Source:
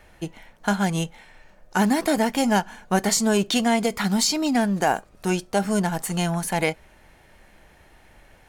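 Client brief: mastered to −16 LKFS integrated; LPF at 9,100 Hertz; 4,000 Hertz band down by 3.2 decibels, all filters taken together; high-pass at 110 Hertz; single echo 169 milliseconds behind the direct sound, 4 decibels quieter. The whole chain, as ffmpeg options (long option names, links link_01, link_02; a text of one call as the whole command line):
ffmpeg -i in.wav -af "highpass=110,lowpass=9100,equalizer=frequency=4000:width_type=o:gain=-4,aecho=1:1:169:0.631,volume=6.5dB" out.wav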